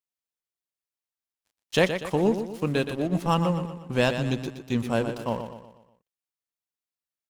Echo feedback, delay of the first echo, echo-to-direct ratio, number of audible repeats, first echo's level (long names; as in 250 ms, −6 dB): 46%, 121 ms, −8.0 dB, 4, −9.0 dB